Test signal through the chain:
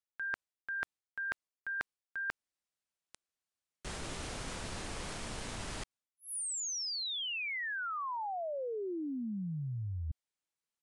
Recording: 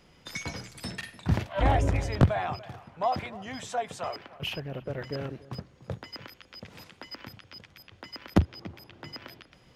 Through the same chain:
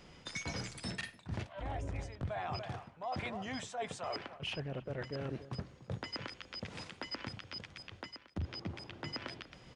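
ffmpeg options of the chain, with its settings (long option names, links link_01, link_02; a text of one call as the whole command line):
ffmpeg -i in.wav -af "areverse,acompressor=threshold=-38dB:ratio=16,areverse,aresample=22050,aresample=44100,volume=2dB" out.wav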